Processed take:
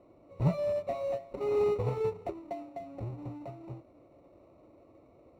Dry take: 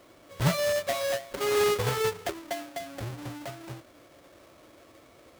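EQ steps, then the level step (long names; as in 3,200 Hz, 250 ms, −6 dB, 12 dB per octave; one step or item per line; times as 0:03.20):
moving average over 27 samples
−1.5 dB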